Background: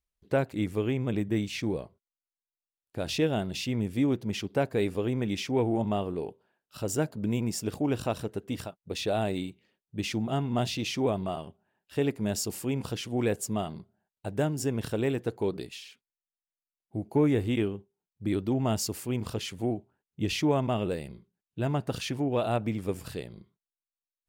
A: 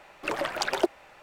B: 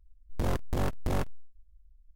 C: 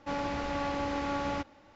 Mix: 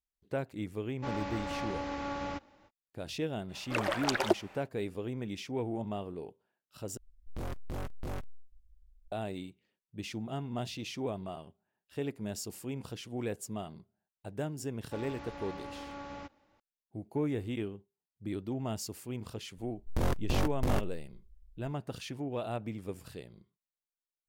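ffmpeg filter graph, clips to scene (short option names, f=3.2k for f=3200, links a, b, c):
-filter_complex "[3:a]asplit=2[a][b];[2:a]asplit=2[c][d];[0:a]volume=-8.5dB[e];[c]asoftclip=type=tanh:threshold=-30dB[f];[e]asplit=2[g][h];[g]atrim=end=6.974[i];[f]atrim=end=2.15,asetpts=PTS-STARTPTS,volume=-3.5dB[j];[h]atrim=start=9.116[k];[a]atrim=end=1.75,asetpts=PTS-STARTPTS,volume=-4.5dB,afade=t=in:d=0.05,afade=t=out:st=1.7:d=0.05,adelay=960[l];[1:a]atrim=end=1.22,asetpts=PTS-STARTPTS,volume=-2.5dB,afade=t=in:d=0.1,afade=t=out:st=1.12:d=0.1,adelay=3470[m];[b]atrim=end=1.75,asetpts=PTS-STARTPTS,volume=-11.5dB,afade=t=in:d=0.004:c=hsin,afade=t=out:st=1.746:d=0.004:c=hsin,adelay=14850[n];[d]atrim=end=2.15,asetpts=PTS-STARTPTS,volume=-0.5dB,afade=t=in:d=0.004:c=hsin,afade=t=out:st=2.146:d=0.004:c=hsin,adelay=19570[o];[i][j]acrossfade=d=0.004:c1=hsin:c2=hsin[p];[p][k]acrossfade=d=0.004:c1=hsin:c2=hsin[q];[q][l][m][n][o]amix=inputs=5:normalize=0"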